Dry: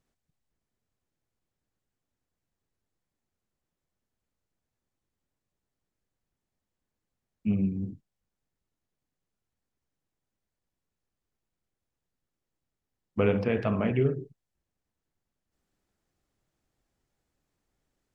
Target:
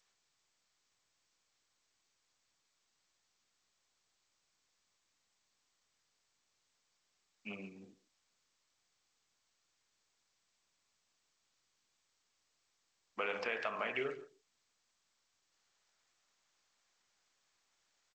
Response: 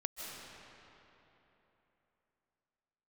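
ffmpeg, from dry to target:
-filter_complex "[0:a]highpass=1000,alimiter=level_in=1.88:limit=0.0631:level=0:latency=1:release=174,volume=0.531,asplit=2[s0][s1];[s1]adelay=140,highpass=300,lowpass=3400,asoftclip=type=hard:threshold=0.0112,volume=0.158[s2];[s0][s2]amix=inputs=2:normalize=0,volume=1.68" -ar 16000 -c:a g722

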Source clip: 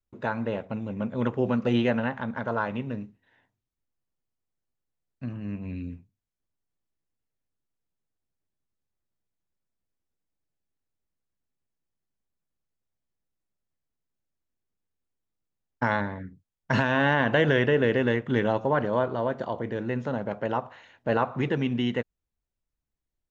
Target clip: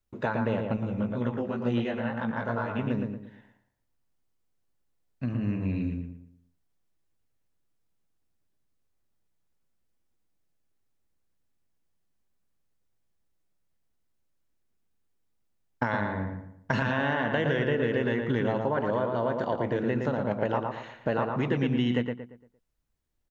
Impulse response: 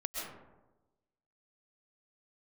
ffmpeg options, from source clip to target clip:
-filter_complex "[0:a]acompressor=threshold=0.0355:ratio=6,asplit=2[s0][s1];[s1]adelay=115,lowpass=f=2300:p=1,volume=0.631,asplit=2[s2][s3];[s3]adelay=115,lowpass=f=2300:p=1,volume=0.37,asplit=2[s4][s5];[s5]adelay=115,lowpass=f=2300:p=1,volume=0.37,asplit=2[s6][s7];[s7]adelay=115,lowpass=f=2300:p=1,volume=0.37,asplit=2[s8][s9];[s9]adelay=115,lowpass=f=2300:p=1,volume=0.37[s10];[s0][s2][s4][s6][s8][s10]amix=inputs=6:normalize=0,asettb=1/sr,asplit=3[s11][s12][s13];[s11]atrim=end=0.764[s14];[s12]atrim=start=0.76:end=2.79,asetpts=PTS-STARTPTS,afade=t=in:d=0.004:c=qsin,afade=t=out:st=2.026:d=0.004:c=qsin,flanger=delay=16.5:depth=3.2:speed=2.1[s15];[s13]atrim=start=2.786[s16];[s14][s15]acrossfade=d=0.004:c1=hsin:c2=qsin[s17];[s17][s16]acrossfade=d=0.004:c1=qsin:c2=hsin,volume=1.68"

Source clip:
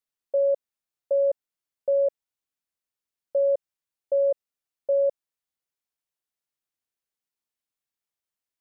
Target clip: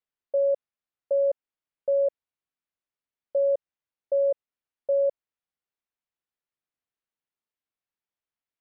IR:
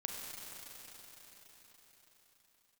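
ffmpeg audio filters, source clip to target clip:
-af "lowpass=3100,volume=0.891"

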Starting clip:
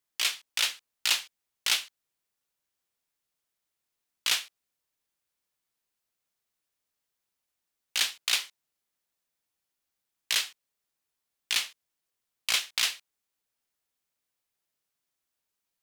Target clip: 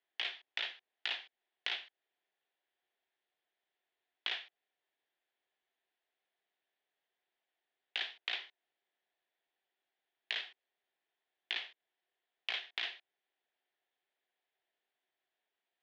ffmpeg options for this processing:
-filter_complex "[0:a]highpass=340,equalizer=f=380:t=q:w=4:g=8,equalizer=f=720:t=q:w=4:g=9,equalizer=f=1200:t=q:w=4:g=-5,equalizer=f=1800:t=q:w=4:g=7,equalizer=f=3400:t=q:w=4:g=5,lowpass=f=3500:w=0.5412,lowpass=f=3500:w=1.3066,acrossover=split=560|2700[s0][s1][s2];[s0]acompressor=threshold=0.00126:ratio=4[s3];[s1]acompressor=threshold=0.00891:ratio=4[s4];[s2]acompressor=threshold=0.00891:ratio=4[s5];[s3][s4][s5]amix=inputs=3:normalize=0,volume=0.891"

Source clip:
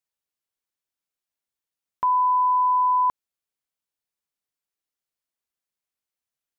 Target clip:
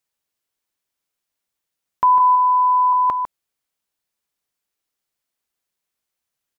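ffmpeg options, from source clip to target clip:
-filter_complex "[0:a]asettb=1/sr,asplit=3[s0][s1][s2];[s0]atrim=end=2.204[s3];[s1]atrim=start=2.2:end=2.93,asetpts=PTS-STARTPTS,afade=t=in:d=0.004:c=qsin,afade=t=out:st=0.726:d=0.004:c=qsin,highpass=440[s4];[s2]atrim=start=2.926[s5];[s3][s4]acrossfade=d=0.004:c1=hsin:c2=qsin[s6];[s6][s5]acrossfade=d=0.004:c1=qsin:c2=hsin,asplit=2[s7][s8];[s8]adelay=151.6,volume=0.355,highshelf=f=4000:g=-3.41[s9];[s7][s9]amix=inputs=2:normalize=0,volume=2.24"

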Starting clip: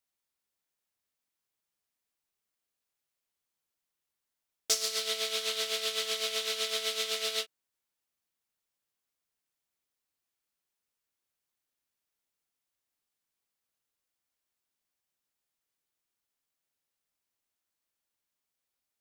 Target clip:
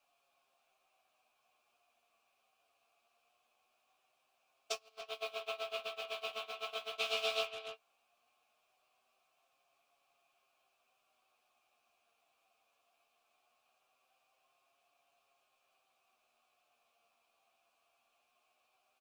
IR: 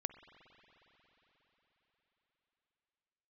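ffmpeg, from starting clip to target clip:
-filter_complex "[0:a]aeval=exprs='val(0)+0.5*0.0188*sgn(val(0))':c=same,aeval=exprs='val(0)+0.00158*(sin(2*PI*60*n/s)+sin(2*PI*2*60*n/s)/2+sin(2*PI*3*60*n/s)/3+sin(2*PI*4*60*n/s)/4+sin(2*PI*5*60*n/s)/5)':c=same,acontrast=43,asettb=1/sr,asplit=3[s0][s1][s2];[s0]atrim=end=4.724[s3];[s1]atrim=start=4.72:end=6.98,asetpts=PTS-STARTPTS,afade=t=in:d=0.004:c=qsin,afade=t=out:st=2.256:d=0.004:c=qsin,highshelf=f=2600:g=-8[s4];[s2]atrim=start=6.976[s5];[s3][s4]acrossfade=d=0.004:c1=hsin:c2=qsin[s6];[s6][s5]acrossfade=d=0.004:c1=qsin:c2=hsin,acontrast=47,asplit=3[s7][s8][s9];[s7]bandpass=f=730:t=q:w=8,volume=1[s10];[s8]bandpass=f=1090:t=q:w=8,volume=0.501[s11];[s9]bandpass=f=2440:t=q:w=8,volume=0.355[s12];[s10][s11][s12]amix=inputs=3:normalize=0,equalizer=f=14000:t=o:w=2.9:g=3,acrusher=bits=8:mix=0:aa=0.000001,asplit=2[s13][s14];[s14]adelay=13,volume=0.447[s15];[s13][s15]amix=inputs=2:normalize=0,agate=range=0.0355:threshold=0.02:ratio=16:detection=peak,flanger=delay=7.1:depth=1.9:regen=44:speed=0.2:shape=triangular,asplit=2[s16][s17];[s17]adelay=290,highpass=300,lowpass=3400,asoftclip=type=hard:threshold=0.0178,volume=0.398[s18];[s16][s18]amix=inputs=2:normalize=0,volume=1.33"

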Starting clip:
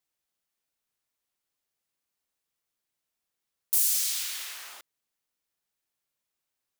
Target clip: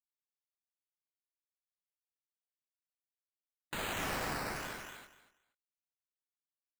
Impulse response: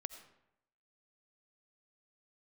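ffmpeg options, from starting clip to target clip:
-filter_complex "[0:a]afftfilt=real='re*gte(hypot(re,im),0.00282)':imag='im*gte(hypot(re,im),0.00282)':win_size=1024:overlap=0.75,flanger=delay=15.5:depth=7.3:speed=2.2,equalizer=f=1500:t=o:w=0.21:g=9,acrossover=split=3900[s0][s1];[s1]acompressor=threshold=0.0158:ratio=4:attack=1:release=60[s2];[s0][s2]amix=inputs=2:normalize=0,acrusher=samples=11:mix=1:aa=0.000001:lfo=1:lforange=6.6:lforate=0.98,aecho=1:1:239|478|717:0.631|0.12|0.0228"

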